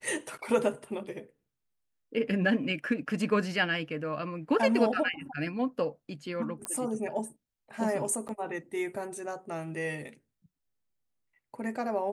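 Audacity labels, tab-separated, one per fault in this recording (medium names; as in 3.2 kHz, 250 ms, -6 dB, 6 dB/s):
6.650000	6.650000	pop -18 dBFS
8.280000	8.290000	dropout 9.3 ms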